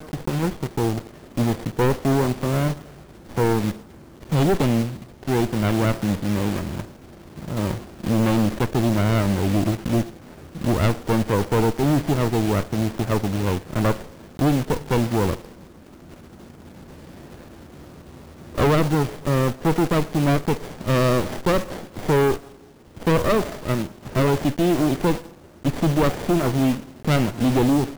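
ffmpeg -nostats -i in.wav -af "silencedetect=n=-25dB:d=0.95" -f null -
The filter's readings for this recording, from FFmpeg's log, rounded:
silence_start: 15.35
silence_end: 18.58 | silence_duration: 3.23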